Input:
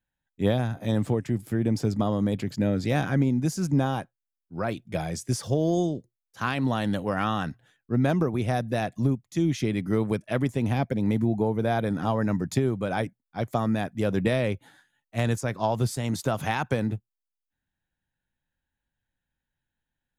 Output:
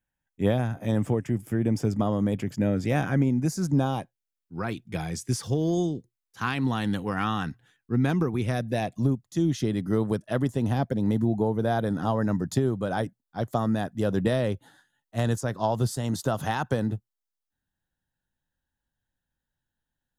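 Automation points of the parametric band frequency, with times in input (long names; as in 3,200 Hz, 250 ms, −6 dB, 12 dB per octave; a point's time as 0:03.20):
parametric band −13 dB 0.31 octaves
0:03.36 4,100 Hz
0:04.58 600 Hz
0:08.39 600 Hz
0:09.08 2,300 Hz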